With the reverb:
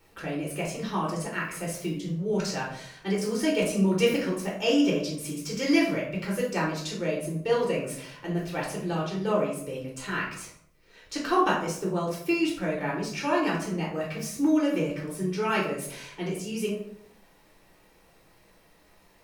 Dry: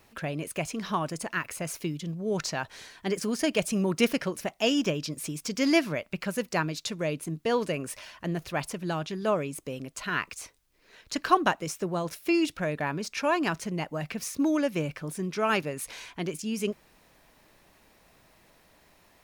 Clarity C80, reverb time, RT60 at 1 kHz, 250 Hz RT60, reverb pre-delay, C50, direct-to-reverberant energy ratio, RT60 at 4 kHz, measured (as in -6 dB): 8.5 dB, 0.70 s, 0.60 s, 0.80 s, 3 ms, 4.5 dB, -4.5 dB, 0.40 s